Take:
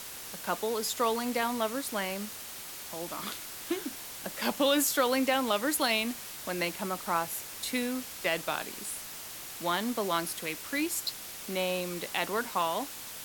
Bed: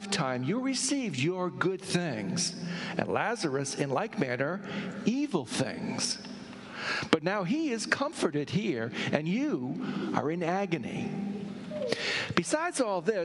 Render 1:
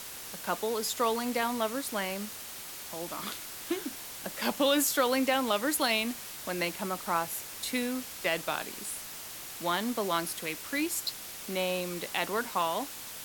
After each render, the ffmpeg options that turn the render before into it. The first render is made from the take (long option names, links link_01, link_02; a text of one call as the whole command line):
ffmpeg -i in.wav -af anull out.wav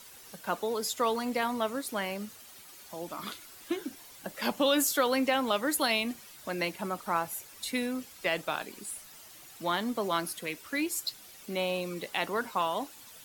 ffmpeg -i in.wav -af "afftdn=noise_reduction=11:noise_floor=-43" out.wav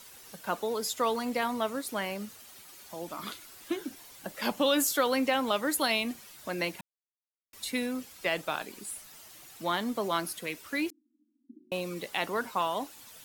ffmpeg -i in.wav -filter_complex "[0:a]asettb=1/sr,asplit=3[link_01][link_02][link_03];[link_01]atrim=end=10.904[link_04];[link_02]atrim=start=10.9:end=11.72,asetpts=PTS-STARTPTS,afade=type=in:duration=0.004:curve=qsin,afade=type=out:start_time=0.816:duration=0.004:curve=qsin,asuperpass=centerf=270:order=12:qfactor=2.7[link_05];[link_03]atrim=start=11.716[link_06];[link_04][link_05]acrossfade=duration=0.004:curve1=hsin:curve2=qsin[link_07];[link_07][link_06]acrossfade=duration=0.004:curve1=qsin:curve2=hsin,asplit=3[link_08][link_09][link_10];[link_08]atrim=end=6.81,asetpts=PTS-STARTPTS,afade=type=out:start_time=6.806:duration=0.004:curve=hsin[link_11];[link_09]atrim=start=6.81:end=7.53,asetpts=PTS-STARTPTS,volume=0[link_12];[link_10]atrim=start=7.53,asetpts=PTS-STARTPTS,afade=type=in:duration=0.004:curve=hsin[link_13];[link_11][link_12][link_13]concat=n=3:v=0:a=1" out.wav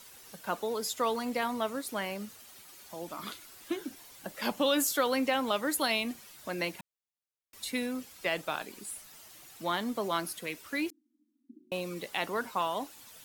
ffmpeg -i in.wav -af "volume=-1.5dB" out.wav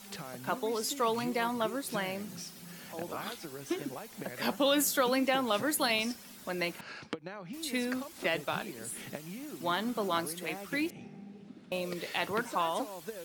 ffmpeg -i in.wav -i bed.wav -filter_complex "[1:a]volume=-14dB[link_01];[0:a][link_01]amix=inputs=2:normalize=0" out.wav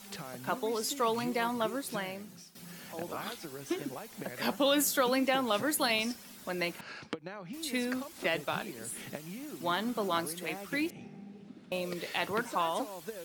ffmpeg -i in.wav -filter_complex "[0:a]asplit=2[link_01][link_02];[link_01]atrim=end=2.55,asetpts=PTS-STARTPTS,afade=type=out:start_time=1.77:duration=0.78:silence=0.223872[link_03];[link_02]atrim=start=2.55,asetpts=PTS-STARTPTS,afade=type=in:duration=0.004:curve=hsin:silence=0.223872[link_04];[link_03][link_04]concat=n=2:v=0:a=1" out.wav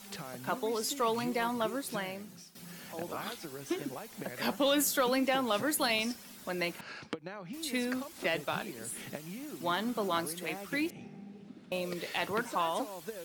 ffmpeg -i in.wav -af "asoftclip=type=tanh:threshold=-16.5dB" out.wav